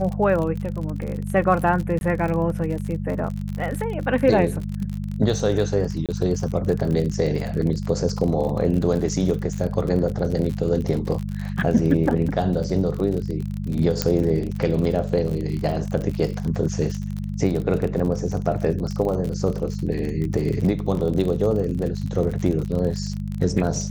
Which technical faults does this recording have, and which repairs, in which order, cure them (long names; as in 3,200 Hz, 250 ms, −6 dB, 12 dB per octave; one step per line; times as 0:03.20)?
surface crackle 47 per second −27 dBFS
mains hum 50 Hz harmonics 4 −28 dBFS
0:01.99–0:02.01: drop-out 21 ms
0:06.06–0:06.09: drop-out 27 ms
0:14.02: click −4 dBFS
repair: click removal
hum removal 50 Hz, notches 4
repair the gap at 0:01.99, 21 ms
repair the gap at 0:06.06, 27 ms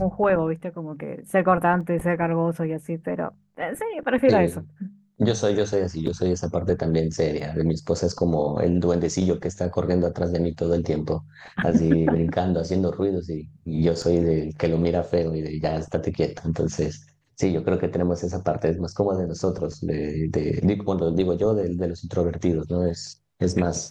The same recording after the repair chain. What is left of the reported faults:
0:14.02: click